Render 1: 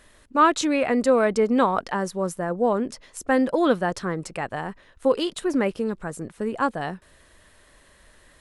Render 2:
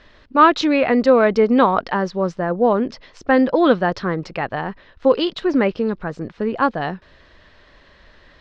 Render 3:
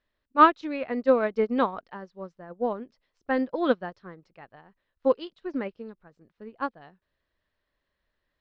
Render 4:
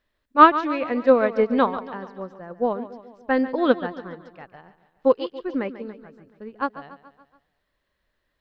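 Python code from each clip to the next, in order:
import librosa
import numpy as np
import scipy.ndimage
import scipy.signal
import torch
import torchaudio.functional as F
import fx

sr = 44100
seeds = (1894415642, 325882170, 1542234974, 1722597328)

y1 = scipy.signal.sosfilt(scipy.signal.butter(6, 5100.0, 'lowpass', fs=sr, output='sos'), x)
y1 = y1 * 10.0 ** (5.5 / 20.0)
y2 = fx.upward_expand(y1, sr, threshold_db=-26.0, expansion=2.5)
y2 = y2 * 10.0 ** (-3.0 / 20.0)
y3 = fx.echo_feedback(y2, sr, ms=142, feedback_pct=54, wet_db=-14.0)
y3 = y3 * 10.0 ** (4.5 / 20.0)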